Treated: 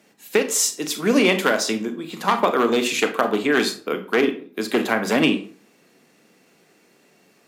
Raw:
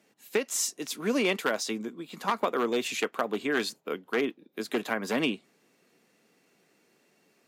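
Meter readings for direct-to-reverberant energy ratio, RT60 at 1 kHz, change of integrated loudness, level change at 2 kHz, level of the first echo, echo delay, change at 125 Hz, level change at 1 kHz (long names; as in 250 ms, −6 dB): 7.5 dB, 0.40 s, +9.5 dB, +9.0 dB, no echo audible, no echo audible, +10.5 dB, +9.5 dB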